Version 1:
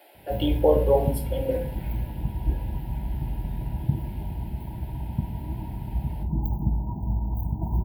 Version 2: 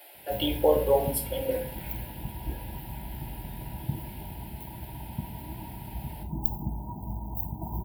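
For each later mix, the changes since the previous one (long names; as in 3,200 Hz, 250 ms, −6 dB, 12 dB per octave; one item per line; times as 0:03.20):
master: add spectral tilt +2.5 dB per octave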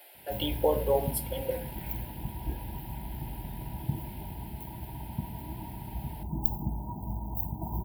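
speech: send −10.5 dB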